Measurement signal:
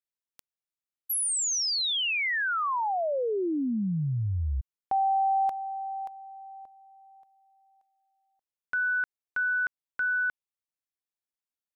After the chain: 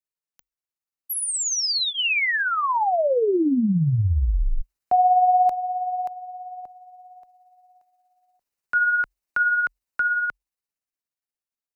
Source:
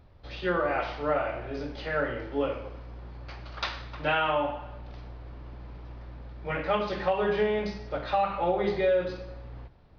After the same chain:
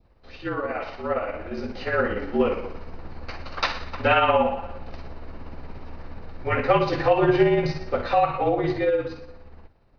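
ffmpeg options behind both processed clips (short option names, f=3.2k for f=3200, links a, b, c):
-af "bandreject=f=3.4k:w=6.6,dynaudnorm=f=160:g=21:m=10dB,afreqshift=-46,tremolo=f=17:d=0.41,adynamicequalizer=threshold=0.0282:dfrequency=1500:dqfactor=1.3:tfrequency=1500:tqfactor=1.3:attack=5:release=100:ratio=0.375:range=2.5:mode=cutabove:tftype=bell"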